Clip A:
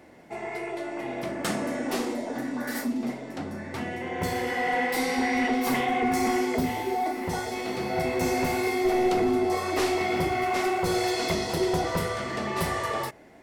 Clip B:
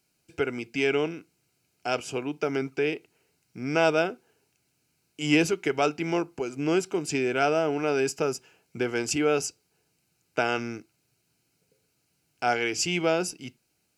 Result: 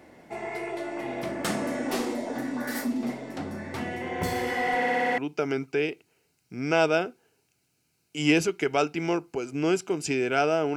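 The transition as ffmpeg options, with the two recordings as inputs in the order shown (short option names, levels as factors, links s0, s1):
-filter_complex "[0:a]apad=whole_dur=10.76,atrim=end=10.76,asplit=7[s0][s1][s2][s3][s4][s5][s6];[s0]atrim=end=4.822[s7];[s1]atrim=start=4.758:end=4.822[s8];[s2]atrim=start=4.758:end=4.822[s9];[s3]atrim=start=4.758:end=4.822[s10];[s4]atrim=start=4.758:end=4.822[s11];[s5]atrim=start=4.758:end=4.822[s12];[s6]atrim=start=4.758:end=4.822[s13];[1:a]atrim=start=2.218:end=7.8[s14];[s7][s8]acrossfade=d=0.004:c1=hsin:c2=hsin[s15];[s15][s9]acrossfade=d=0.004:c1=hsin:c2=hsin[s16];[s16][s10]acrossfade=d=0.004:c1=hsin:c2=hsin[s17];[s17][s11]acrossfade=d=0.004:c1=hsin:c2=hsin[s18];[s18][s12]acrossfade=d=0.004:c1=hsin:c2=hsin[s19];[s19][s13]acrossfade=d=0.004:c1=hsin:c2=hsin[s20];[s20][s14]acrossfade=d=0.004:c1=hsin:c2=hsin"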